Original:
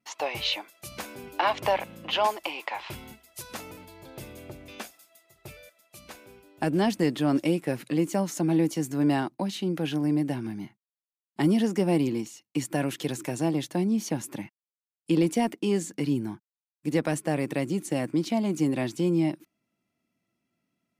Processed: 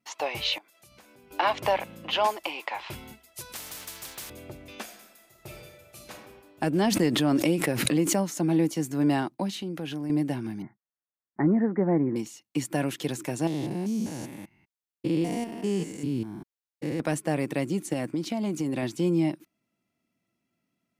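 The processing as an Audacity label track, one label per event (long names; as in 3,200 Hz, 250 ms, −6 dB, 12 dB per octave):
0.580000	1.310000	downward compressor 3 to 1, threshold −57 dBFS
3.520000	4.300000	every bin compressed towards the loudest bin 10 to 1
4.820000	6.110000	thrown reverb, RT60 1.2 s, DRR 0 dB
6.840000	8.280000	background raised ahead of every attack at most 33 dB per second
9.540000	10.100000	downward compressor 2.5 to 1, threshold −32 dBFS
10.620000	12.160000	Butterworth low-pass 2,000 Hz 72 dB per octave
13.470000	17.000000	spectrum averaged block by block every 200 ms
17.930000	18.830000	downward compressor, threshold −24 dBFS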